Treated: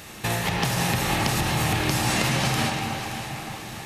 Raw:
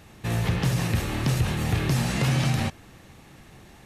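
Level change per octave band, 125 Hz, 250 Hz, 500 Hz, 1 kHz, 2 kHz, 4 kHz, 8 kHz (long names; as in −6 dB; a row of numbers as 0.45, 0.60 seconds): −3.0, +0.5, +3.5, +8.5, +6.5, +7.0, +7.5 decibels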